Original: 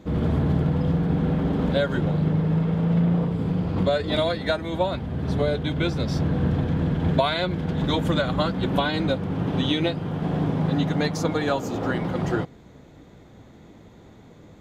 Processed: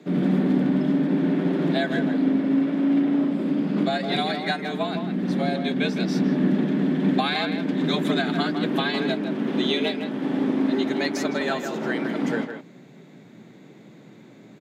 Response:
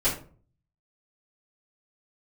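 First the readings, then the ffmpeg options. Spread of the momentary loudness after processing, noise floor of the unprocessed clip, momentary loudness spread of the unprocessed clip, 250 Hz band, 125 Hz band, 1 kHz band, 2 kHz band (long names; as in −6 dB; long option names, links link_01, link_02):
5 LU, −49 dBFS, 4 LU, +3.5 dB, −7.5 dB, −0.5 dB, +3.0 dB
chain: -filter_complex "[0:a]afreqshift=110,equalizer=frequency=125:width_type=o:width=1:gain=9,equalizer=frequency=500:width_type=o:width=1:gain=-4,equalizer=frequency=1000:width_type=o:width=1:gain=-6,equalizer=frequency=2000:width_type=o:width=1:gain=4,asplit=2[link_01][link_02];[link_02]adelay=160,highpass=300,lowpass=3400,asoftclip=type=hard:threshold=-18.5dB,volume=-7dB[link_03];[link_01][link_03]amix=inputs=2:normalize=0"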